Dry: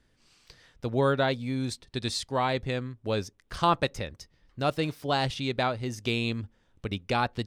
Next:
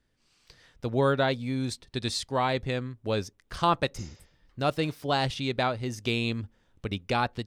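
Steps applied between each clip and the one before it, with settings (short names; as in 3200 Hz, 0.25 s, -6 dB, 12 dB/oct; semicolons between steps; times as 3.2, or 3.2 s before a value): spectral repair 4.01–4.4, 370–7600 Hz both; AGC gain up to 7 dB; gain -6.5 dB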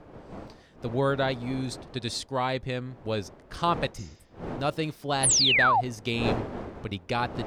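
wind noise 540 Hz -38 dBFS; painted sound fall, 5.23–5.81, 680–11000 Hz -20 dBFS; gain -1.5 dB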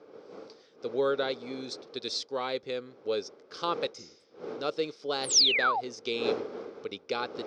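speaker cabinet 420–5800 Hz, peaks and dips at 450 Hz +8 dB, 680 Hz -9 dB, 960 Hz -9 dB, 1800 Hz -10 dB, 2800 Hz -6 dB, 5400 Hz +6 dB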